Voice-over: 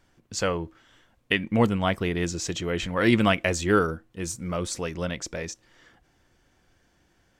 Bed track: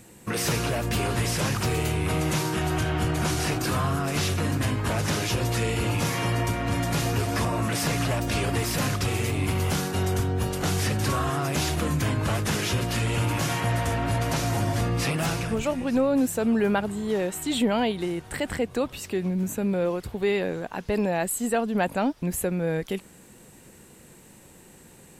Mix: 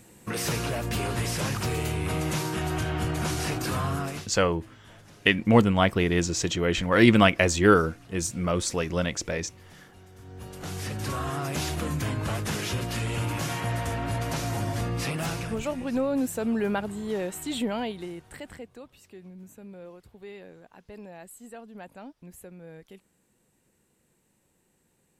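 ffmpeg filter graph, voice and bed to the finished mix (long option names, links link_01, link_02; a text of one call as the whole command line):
ffmpeg -i stem1.wav -i stem2.wav -filter_complex "[0:a]adelay=3950,volume=3dB[link_01];[1:a]volume=19.5dB,afade=type=out:start_time=4.02:duration=0.25:silence=0.0668344,afade=type=in:start_time=10.16:duration=1.21:silence=0.0749894,afade=type=out:start_time=17.37:duration=1.41:silence=0.177828[link_02];[link_01][link_02]amix=inputs=2:normalize=0" out.wav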